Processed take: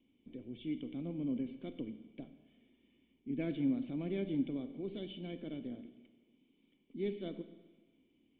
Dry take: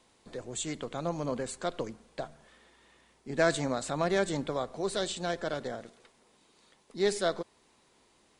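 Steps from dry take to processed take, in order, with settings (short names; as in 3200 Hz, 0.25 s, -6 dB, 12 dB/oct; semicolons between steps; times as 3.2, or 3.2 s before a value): vocal tract filter i; Schroeder reverb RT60 1.3 s, combs from 29 ms, DRR 10.5 dB; gain +4 dB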